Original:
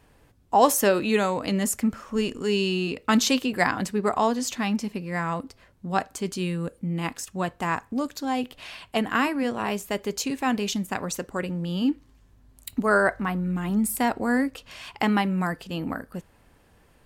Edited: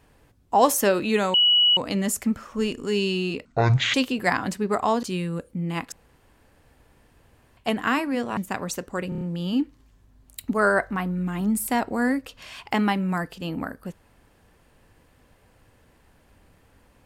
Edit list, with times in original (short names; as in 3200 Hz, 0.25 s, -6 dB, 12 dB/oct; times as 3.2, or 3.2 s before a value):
1.34 add tone 2930 Hz -14.5 dBFS 0.43 s
3.02–3.28 speed 53%
4.37–6.31 cut
7.2–8.85 room tone
9.65–10.78 cut
11.5 stutter 0.03 s, 5 plays